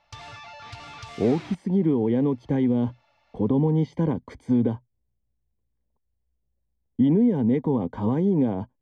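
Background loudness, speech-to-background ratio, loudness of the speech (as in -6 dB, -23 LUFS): -41.5 LUFS, 18.0 dB, -23.5 LUFS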